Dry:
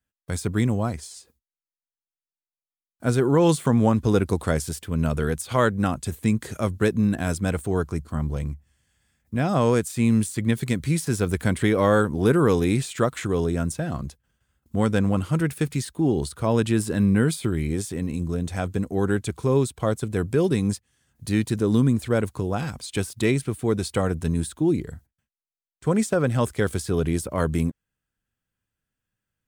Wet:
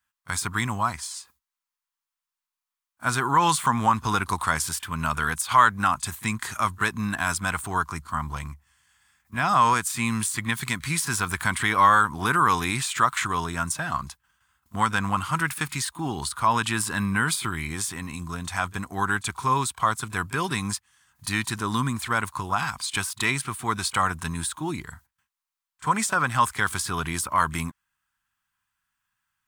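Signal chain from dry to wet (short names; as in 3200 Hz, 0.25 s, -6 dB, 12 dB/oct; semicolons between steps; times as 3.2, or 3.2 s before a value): resonant low shelf 710 Hz -12.5 dB, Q 3; in parallel at -0.5 dB: limiter -18.5 dBFS, peak gain reduction 11.5 dB; on the sum: pre-echo 30 ms -21 dB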